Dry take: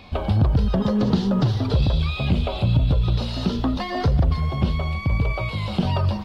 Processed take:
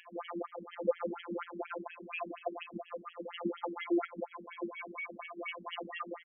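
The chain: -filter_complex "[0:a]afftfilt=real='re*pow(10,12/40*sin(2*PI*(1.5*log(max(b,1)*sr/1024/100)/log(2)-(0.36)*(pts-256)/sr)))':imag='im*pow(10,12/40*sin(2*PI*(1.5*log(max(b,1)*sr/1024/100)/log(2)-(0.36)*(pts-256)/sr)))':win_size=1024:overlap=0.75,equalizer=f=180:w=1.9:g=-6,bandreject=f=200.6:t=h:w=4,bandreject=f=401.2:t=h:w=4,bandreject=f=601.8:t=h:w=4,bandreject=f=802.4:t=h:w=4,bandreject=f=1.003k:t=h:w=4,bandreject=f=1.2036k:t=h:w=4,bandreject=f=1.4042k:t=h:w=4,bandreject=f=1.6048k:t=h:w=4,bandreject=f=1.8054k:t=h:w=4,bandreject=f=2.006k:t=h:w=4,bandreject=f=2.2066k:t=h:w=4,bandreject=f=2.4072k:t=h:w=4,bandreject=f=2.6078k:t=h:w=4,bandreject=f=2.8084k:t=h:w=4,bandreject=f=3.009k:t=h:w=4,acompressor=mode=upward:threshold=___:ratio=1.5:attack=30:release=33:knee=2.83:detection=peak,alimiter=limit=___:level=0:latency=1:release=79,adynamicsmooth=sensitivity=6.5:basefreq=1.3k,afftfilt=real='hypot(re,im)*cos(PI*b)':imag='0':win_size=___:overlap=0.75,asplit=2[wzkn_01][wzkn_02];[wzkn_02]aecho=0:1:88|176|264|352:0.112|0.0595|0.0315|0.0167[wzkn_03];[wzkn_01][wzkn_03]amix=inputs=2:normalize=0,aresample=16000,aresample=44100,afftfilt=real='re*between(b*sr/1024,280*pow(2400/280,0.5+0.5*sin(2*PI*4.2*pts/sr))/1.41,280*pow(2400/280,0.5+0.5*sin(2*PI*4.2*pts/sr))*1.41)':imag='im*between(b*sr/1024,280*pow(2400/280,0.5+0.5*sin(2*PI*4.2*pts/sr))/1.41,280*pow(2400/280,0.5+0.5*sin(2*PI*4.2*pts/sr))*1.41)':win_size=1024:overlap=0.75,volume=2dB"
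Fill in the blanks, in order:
-39dB, -15.5dB, 1024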